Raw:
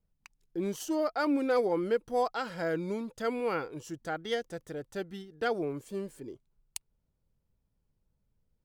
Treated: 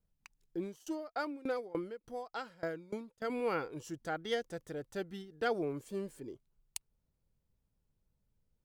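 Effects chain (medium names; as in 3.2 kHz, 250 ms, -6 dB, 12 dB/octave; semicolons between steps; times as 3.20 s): 0.57–3.30 s: sawtooth tremolo in dB decaying 3.4 Hz, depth 23 dB; trim -2.5 dB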